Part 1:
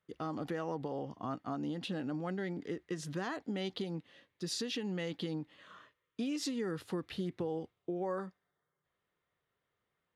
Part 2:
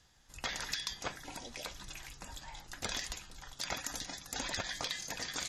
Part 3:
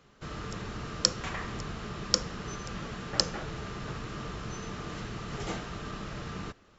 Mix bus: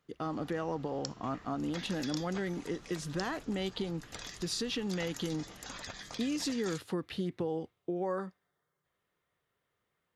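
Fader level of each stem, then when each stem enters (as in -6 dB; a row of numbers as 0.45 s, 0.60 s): +2.5 dB, -7.0 dB, -17.5 dB; 0.00 s, 1.30 s, 0.00 s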